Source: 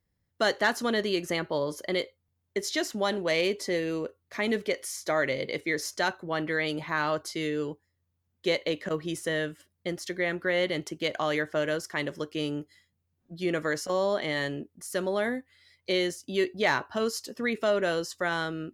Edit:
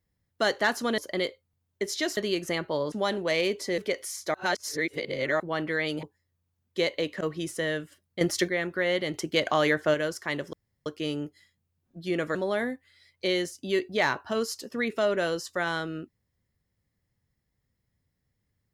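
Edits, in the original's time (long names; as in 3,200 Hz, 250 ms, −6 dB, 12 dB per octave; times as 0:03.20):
0:00.98–0:01.73: move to 0:02.92
0:03.78–0:04.58: remove
0:05.14–0:06.20: reverse
0:06.83–0:07.71: remove
0:09.89–0:10.16: clip gain +9 dB
0:10.82–0:11.62: clip gain +4.5 dB
0:12.21: splice in room tone 0.33 s
0:13.70–0:15.00: remove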